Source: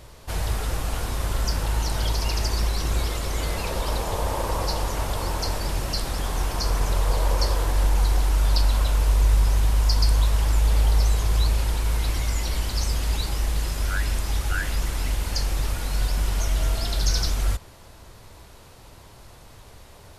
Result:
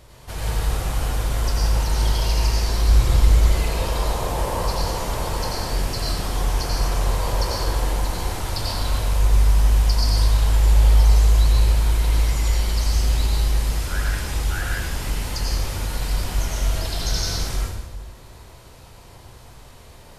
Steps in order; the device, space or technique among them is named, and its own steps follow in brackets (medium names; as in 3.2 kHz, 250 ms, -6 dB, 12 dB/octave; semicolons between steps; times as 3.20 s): 2.88–3.33 s: bass shelf 130 Hz +11 dB; bathroom (reverberation RT60 1.0 s, pre-delay 81 ms, DRR -3.5 dB); trim -3 dB